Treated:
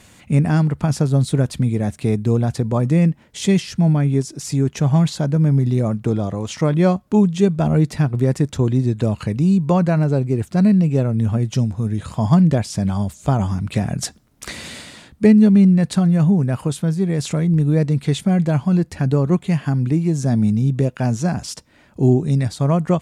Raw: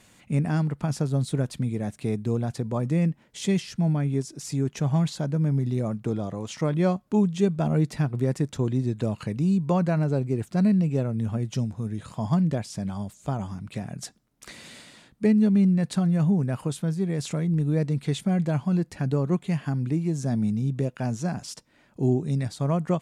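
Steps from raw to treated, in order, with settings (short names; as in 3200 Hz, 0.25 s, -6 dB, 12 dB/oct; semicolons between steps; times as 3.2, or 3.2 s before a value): bell 74 Hz +9.5 dB 0.62 oct; in parallel at +1.5 dB: vocal rider 2 s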